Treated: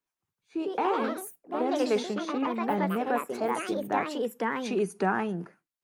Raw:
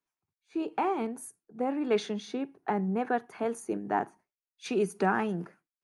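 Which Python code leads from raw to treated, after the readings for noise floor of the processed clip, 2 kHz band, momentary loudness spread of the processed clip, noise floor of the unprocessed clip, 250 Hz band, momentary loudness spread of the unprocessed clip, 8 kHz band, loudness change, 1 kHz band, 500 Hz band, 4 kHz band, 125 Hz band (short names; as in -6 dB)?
under -85 dBFS, +3.0 dB, 7 LU, under -85 dBFS, +2.0 dB, 11 LU, +2.0 dB, +2.0 dB, +2.5 dB, +2.5 dB, +4.0 dB, 0.0 dB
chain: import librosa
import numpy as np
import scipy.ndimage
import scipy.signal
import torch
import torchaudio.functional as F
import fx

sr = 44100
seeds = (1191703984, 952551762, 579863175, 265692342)

y = fx.echo_pitch(x, sr, ms=193, semitones=3, count=3, db_per_echo=-3.0)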